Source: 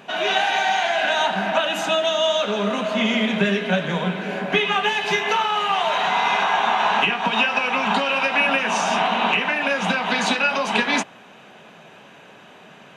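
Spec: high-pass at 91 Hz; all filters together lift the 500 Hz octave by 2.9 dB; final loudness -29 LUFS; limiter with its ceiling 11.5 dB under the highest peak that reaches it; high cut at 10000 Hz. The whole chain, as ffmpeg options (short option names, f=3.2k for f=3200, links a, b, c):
-af "highpass=91,lowpass=10k,equalizer=f=500:t=o:g=4,volume=-4.5dB,alimiter=limit=-21dB:level=0:latency=1"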